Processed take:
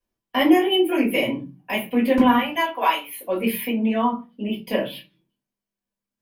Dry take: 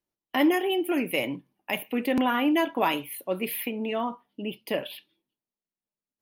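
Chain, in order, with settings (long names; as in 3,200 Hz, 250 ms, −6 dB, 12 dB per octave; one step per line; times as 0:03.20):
0:02.38–0:03.15: high-pass filter 720 Hz 12 dB per octave
convolution reverb RT60 0.25 s, pre-delay 3 ms, DRR −9.5 dB
level −6.5 dB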